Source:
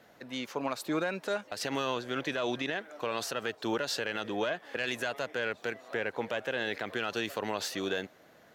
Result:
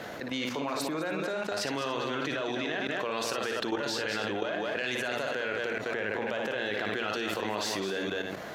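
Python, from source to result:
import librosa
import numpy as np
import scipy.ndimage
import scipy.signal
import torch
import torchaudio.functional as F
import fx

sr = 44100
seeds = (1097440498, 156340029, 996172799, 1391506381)

y = fx.high_shelf(x, sr, hz=9500.0, db=-8.0)
y = fx.echo_multitap(y, sr, ms=(57, 207, 289), db=(-6.0, -7.5, -14.5))
y = fx.level_steps(y, sr, step_db=14)
y = fx.hum_notches(y, sr, base_hz=60, count=4)
y = fx.env_flatten(y, sr, amount_pct=70)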